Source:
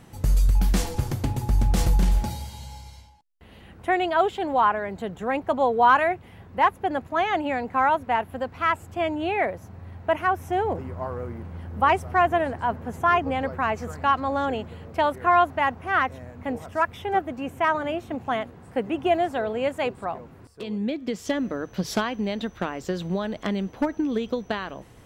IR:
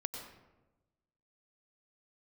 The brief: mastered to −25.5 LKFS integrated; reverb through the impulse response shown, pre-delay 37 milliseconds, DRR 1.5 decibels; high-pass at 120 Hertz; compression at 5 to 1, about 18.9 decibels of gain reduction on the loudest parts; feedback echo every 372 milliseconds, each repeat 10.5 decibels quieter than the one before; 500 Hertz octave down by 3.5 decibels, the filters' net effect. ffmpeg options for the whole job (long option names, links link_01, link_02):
-filter_complex "[0:a]highpass=120,equalizer=frequency=500:width_type=o:gain=-5,acompressor=threshold=-37dB:ratio=5,aecho=1:1:372|744|1116:0.299|0.0896|0.0269,asplit=2[link_01][link_02];[1:a]atrim=start_sample=2205,adelay=37[link_03];[link_02][link_03]afir=irnorm=-1:irlink=0,volume=-1.5dB[link_04];[link_01][link_04]amix=inputs=2:normalize=0,volume=12dB"